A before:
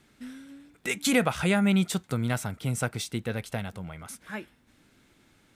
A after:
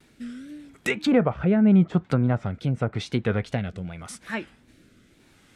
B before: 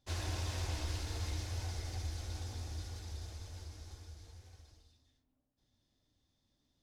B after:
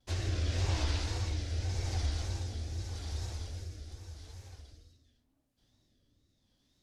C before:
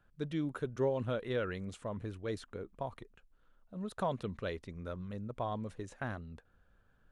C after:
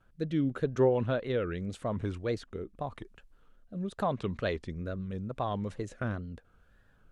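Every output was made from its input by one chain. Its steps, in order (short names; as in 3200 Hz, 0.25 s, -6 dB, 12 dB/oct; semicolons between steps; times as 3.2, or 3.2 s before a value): wow and flutter 120 cents; treble ducked by the level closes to 1100 Hz, closed at -24 dBFS; rotary speaker horn 0.85 Hz; gain +7.5 dB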